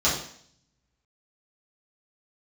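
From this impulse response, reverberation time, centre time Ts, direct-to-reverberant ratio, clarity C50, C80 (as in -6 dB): 0.60 s, 39 ms, -10.0 dB, 4.5 dB, 8.5 dB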